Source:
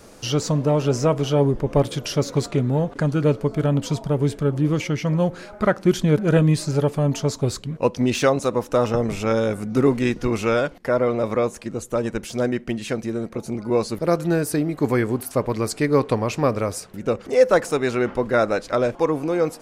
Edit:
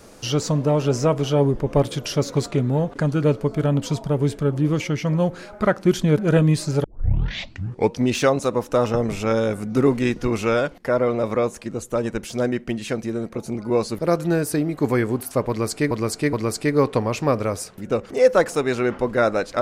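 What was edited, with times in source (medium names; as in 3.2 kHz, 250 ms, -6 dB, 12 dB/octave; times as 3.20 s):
6.84 s: tape start 1.14 s
15.49–15.91 s: loop, 3 plays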